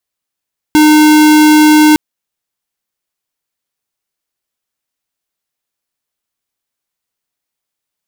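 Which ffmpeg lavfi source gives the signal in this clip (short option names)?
-f lavfi -i "aevalsrc='0.531*(2*lt(mod(305*t,1),0.5)-1)':d=1.21:s=44100"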